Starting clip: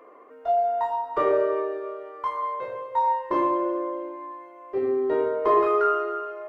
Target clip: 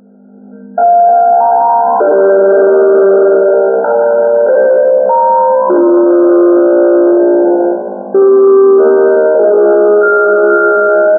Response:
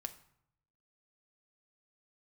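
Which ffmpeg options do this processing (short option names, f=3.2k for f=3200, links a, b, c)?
-filter_complex "[0:a]areverse,acompressor=threshold=-30dB:ratio=12,areverse,agate=range=-26dB:threshold=-43dB:ratio=16:detection=peak,asuperstop=centerf=1100:order=12:qfactor=2.8,aeval=exprs='val(0)+0.00141*(sin(2*PI*50*n/s)+sin(2*PI*2*50*n/s)/2+sin(2*PI*3*50*n/s)/3+sin(2*PI*4*50*n/s)/4+sin(2*PI*5*50*n/s)/5)':c=same,asplit=5[a][b][c][d][e];[b]adelay=145,afreqshift=66,volume=-16dB[f];[c]adelay=290,afreqshift=132,volume=-22.2dB[g];[d]adelay=435,afreqshift=198,volume=-28.4dB[h];[e]adelay=580,afreqshift=264,volume=-34.6dB[i];[a][f][g][h][i]amix=inputs=5:normalize=0[j];[1:a]atrim=start_sample=2205,asetrate=31311,aresample=44100[k];[j][k]afir=irnorm=-1:irlink=0,asoftclip=type=tanh:threshold=-31dB,dynaudnorm=f=100:g=5:m=11dB,atempo=0.58,afftfilt=real='re*between(b*sr/4096,190,1600)':imag='im*between(b*sr/4096,190,1600)':win_size=4096:overlap=0.75,alimiter=level_in=29dB:limit=-1dB:release=50:level=0:latency=1,volume=-1dB"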